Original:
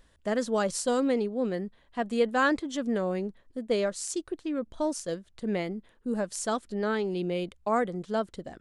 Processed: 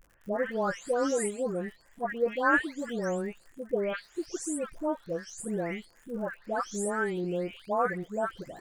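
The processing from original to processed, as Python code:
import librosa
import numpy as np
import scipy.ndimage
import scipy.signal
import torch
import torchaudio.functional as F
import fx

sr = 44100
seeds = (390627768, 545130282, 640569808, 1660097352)

y = fx.spec_delay(x, sr, highs='late', ms=450)
y = fx.dmg_crackle(y, sr, seeds[0], per_s=110.0, level_db=-45.0)
y = fx.graphic_eq_15(y, sr, hz=(250, 1600, 4000), db=(-4, 5, -11))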